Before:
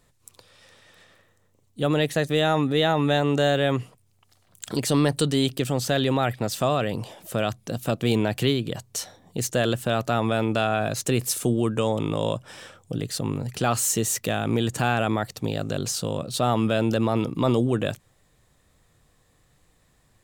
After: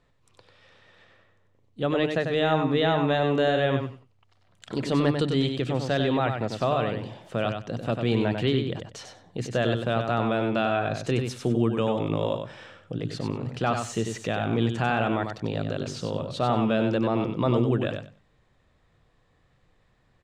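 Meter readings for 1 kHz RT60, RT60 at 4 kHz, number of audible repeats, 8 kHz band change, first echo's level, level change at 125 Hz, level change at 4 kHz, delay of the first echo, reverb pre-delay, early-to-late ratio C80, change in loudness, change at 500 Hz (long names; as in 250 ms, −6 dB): no reverb audible, no reverb audible, 2, −15.5 dB, −6.0 dB, −2.0 dB, −4.5 dB, 95 ms, no reverb audible, no reverb audible, −1.5 dB, −1.0 dB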